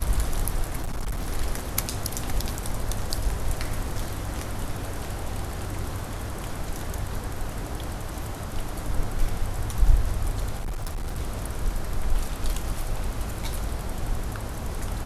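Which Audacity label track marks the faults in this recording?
0.800000	1.310000	clipped -24.5 dBFS
10.590000	11.180000	clipped -26 dBFS

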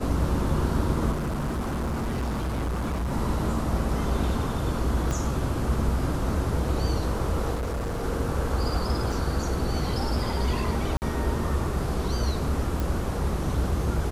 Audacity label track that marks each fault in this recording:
1.110000	3.130000	clipped -25 dBFS
5.110000	5.110000	pop
7.540000	8.040000	clipped -26 dBFS
9.120000	9.120000	dropout 3.5 ms
10.970000	11.020000	dropout 49 ms
12.800000	12.800000	pop

